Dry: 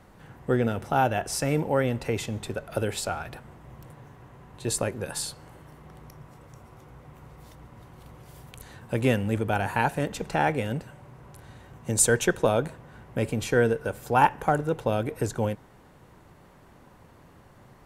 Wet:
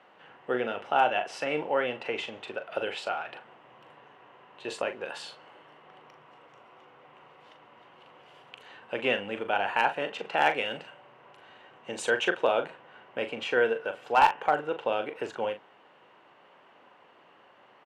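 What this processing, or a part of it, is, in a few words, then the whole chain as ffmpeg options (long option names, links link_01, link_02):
megaphone: -filter_complex "[0:a]asettb=1/sr,asplit=3[link_01][link_02][link_03];[link_01]atrim=end=10.414[link_04];[link_02]atrim=start=10.41:end=10.9,asetpts=PTS-STARTPTS,afade=type=in:duration=0.004:curve=qsin,afade=type=out:start_time=0.486:duration=0.004:curve=qsin,highshelf=frequency=3200:gain=9[link_05];[link_03]atrim=start=10.896[link_06];[link_04][link_05]acrossfade=duration=0.004:curve1=hsin:curve2=qsin[link_07];[link_07][link_06]acrossfade=duration=0.004:curve1=qsin:curve2=hsin,highpass=490,lowpass=2800,equalizer=frequency=2900:width_type=o:width=0.36:gain=11,asoftclip=type=hard:threshold=-13dB,asplit=2[link_08][link_09];[link_09]adelay=40,volume=-9dB[link_10];[link_08][link_10]amix=inputs=2:normalize=0"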